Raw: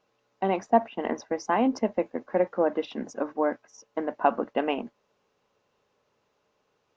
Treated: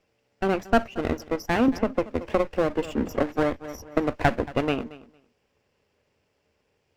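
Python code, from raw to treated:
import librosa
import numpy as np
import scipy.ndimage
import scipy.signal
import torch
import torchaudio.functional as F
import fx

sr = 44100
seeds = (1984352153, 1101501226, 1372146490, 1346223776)

y = fx.lower_of_two(x, sr, delay_ms=0.39)
y = fx.peak_eq(y, sr, hz=79.0, db=9.5, octaves=0.77)
y = fx.echo_feedback(y, sr, ms=228, feedback_pct=16, wet_db=-19.0)
y = fx.band_squash(y, sr, depth_pct=100, at=(1.68, 4.22))
y = y * 10.0 ** (2.0 / 20.0)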